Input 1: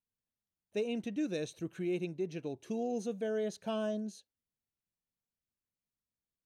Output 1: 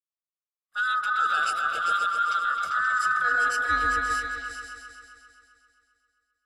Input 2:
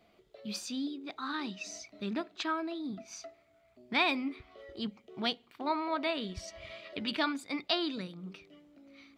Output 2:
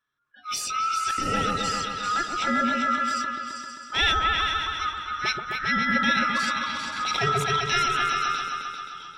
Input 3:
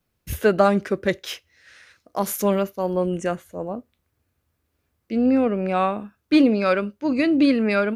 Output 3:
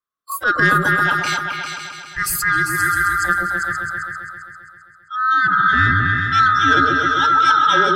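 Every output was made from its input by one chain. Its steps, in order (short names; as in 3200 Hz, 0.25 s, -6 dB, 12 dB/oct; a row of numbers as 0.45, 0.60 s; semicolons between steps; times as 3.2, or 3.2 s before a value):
band-swap scrambler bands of 1000 Hz; spectral noise reduction 27 dB; dynamic EQ 1200 Hz, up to -5 dB, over -33 dBFS, Q 3.7; transient shaper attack -10 dB, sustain +3 dB; in parallel at +0.5 dB: compressor, threshold -35 dBFS; on the sum: soft clip -10.5 dBFS; on a send: repeats that get brighter 0.132 s, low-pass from 750 Hz, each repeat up 2 oct, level 0 dB; on the sum: gain +5 dB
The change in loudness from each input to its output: +12.5, +10.5, +5.5 LU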